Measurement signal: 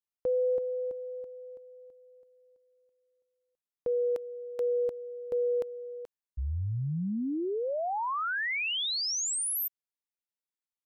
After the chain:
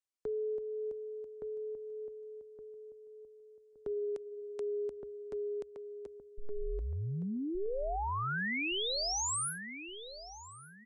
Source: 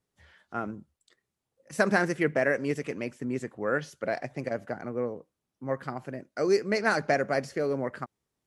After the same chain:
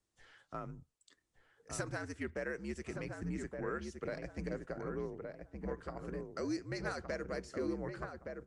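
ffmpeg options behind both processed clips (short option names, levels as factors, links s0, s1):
-filter_complex "[0:a]equalizer=f=7400:t=o:w=1.3:g=5,acompressor=threshold=0.0316:ratio=4:attack=2:release=663:knee=1:detection=rms,afreqshift=-73,asplit=2[s0][s1];[s1]adelay=1168,lowpass=f=1200:p=1,volume=0.631,asplit=2[s2][s3];[s3]adelay=1168,lowpass=f=1200:p=1,volume=0.36,asplit=2[s4][s5];[s5]adelay=1168,lowpass=f=1200:p=1,volume=0.36,asplit=2[s6][s7];[s7]adelay=1168,lowpass=f=1200:p=1,volume=0.36,asplit=2[s8][s9];[s9]adelay=1168,lowpass=f=1200:p=1,volume=0.36[s10];[s2][s4][s6][s8][s10]amix=inputs=5:normalize=0[s11];[s0][s11]amix=inputs=2:normalize=0,aresample=22050,aresample=44100,volume=0.668"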